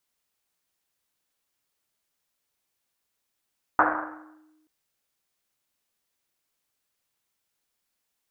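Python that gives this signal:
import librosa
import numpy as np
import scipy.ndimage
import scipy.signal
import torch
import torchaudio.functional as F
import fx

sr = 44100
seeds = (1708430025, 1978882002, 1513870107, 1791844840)

y = fx.risset_drum(sr, seeds[0], length_s=0.88, hz=310.0, decay_s=1.42, noise_hz=1100.0, noise_width_hz=1000.0, noise_pct=75)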